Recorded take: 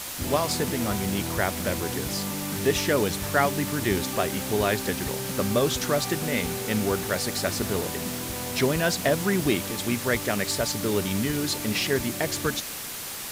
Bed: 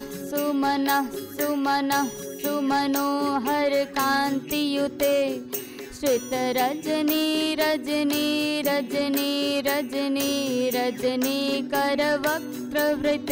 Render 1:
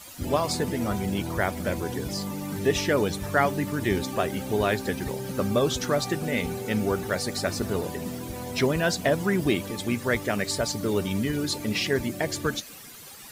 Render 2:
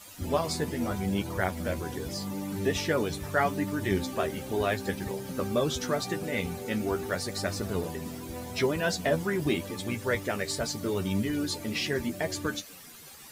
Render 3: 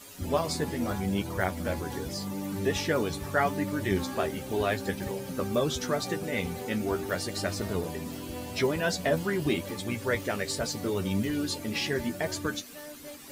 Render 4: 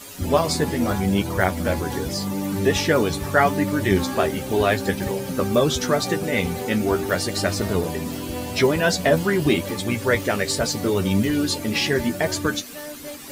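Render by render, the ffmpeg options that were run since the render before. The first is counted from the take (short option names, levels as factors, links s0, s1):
-af "afftdn=nr=13:nf=-35"
-af "flanger=delay=9.9:depth=3.3:regen=31:speed=0.8:shape=sinusoidal"
-filter_complex "[1:a]volume=0.075[s0];[0:a][s0]amix=inputs=2:normalize=0"
-af "volume=2.66"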